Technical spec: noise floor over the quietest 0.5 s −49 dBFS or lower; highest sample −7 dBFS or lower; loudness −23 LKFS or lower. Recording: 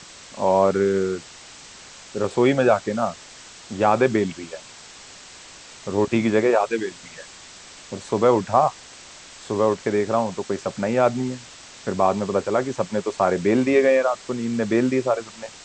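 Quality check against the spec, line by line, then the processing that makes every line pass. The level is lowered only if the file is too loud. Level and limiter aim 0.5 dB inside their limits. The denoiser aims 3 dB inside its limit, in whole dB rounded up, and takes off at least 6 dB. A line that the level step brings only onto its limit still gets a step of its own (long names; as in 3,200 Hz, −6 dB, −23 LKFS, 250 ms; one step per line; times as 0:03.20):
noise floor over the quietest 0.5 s −44 dBFS: out of spec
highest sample −4.0 dBFS: out of spec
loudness −21.5 LKFS: out of spec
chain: broadband denoise 6 dB, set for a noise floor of −44 dBFS
level −2 dB
brickwall limiter −7.5 dBFS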